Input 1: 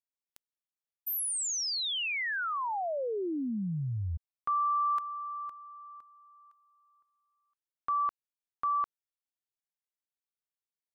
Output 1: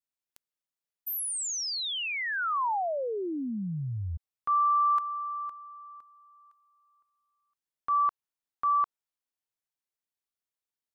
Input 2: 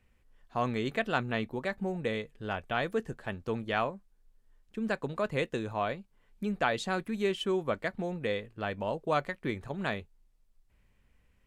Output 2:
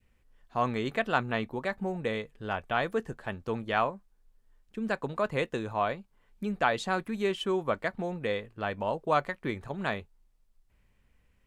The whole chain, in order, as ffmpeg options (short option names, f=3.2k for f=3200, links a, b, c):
-af "adynamicequalizer=threshold=0.01:dfrequency=1000:dqfactor=1.1:tfrequency=1000:tqfactor=1.1:attack=5:release=100:ratio=0.375:range=2.5:mode=boostabove:tftype=bell"